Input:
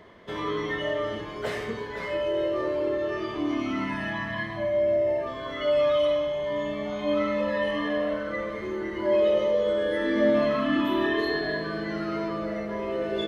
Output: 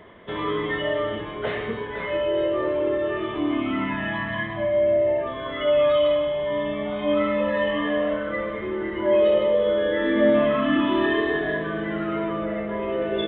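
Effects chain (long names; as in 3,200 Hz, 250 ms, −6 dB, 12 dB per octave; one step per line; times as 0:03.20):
downsampling to 8,000 Hz
level +3.5 dB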